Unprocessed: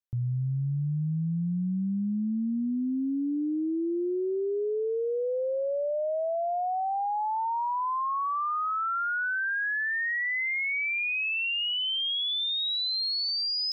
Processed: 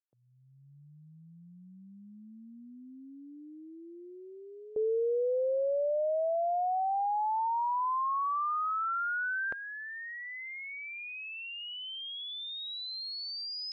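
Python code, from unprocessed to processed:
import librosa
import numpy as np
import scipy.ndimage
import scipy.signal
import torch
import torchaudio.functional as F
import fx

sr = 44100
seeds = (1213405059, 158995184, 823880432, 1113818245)

y = fx.fade_in_head(x, sr, length_s=0.78)
y = scipy.signal.sosfilt(scipy.signal.butter(2, 250.0, 'highpass', fs=sr, output='sos'), y)
y = fx.high_shelf(y, sr, hz=2500.0, db=9.0)
y = fx.rider(y, sr, range_db=3, speed_s=0.5)
y = fx.filter_lfo_bandpass(y, sr, shape='saw_up', hz=0.21, low_hz=530.0, high_hz=2500.0, q=1.9)
y = F.gain(torch.from_numpy(y), -1.0).numpy()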